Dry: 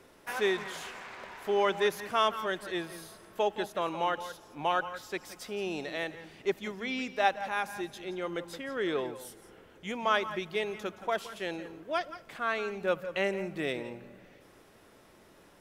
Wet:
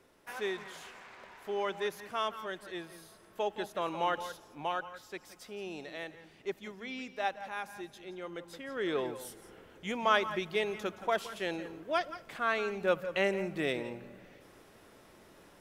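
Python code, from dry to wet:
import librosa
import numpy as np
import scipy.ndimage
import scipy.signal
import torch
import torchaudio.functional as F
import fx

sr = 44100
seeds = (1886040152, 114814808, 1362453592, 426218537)

y = fx.gain(x, sr, db=fx.line((3.03, -7.0), (4.25, 0.0), (4.82, -7.0), (8.4, -7.0), (9.11, 0.5)))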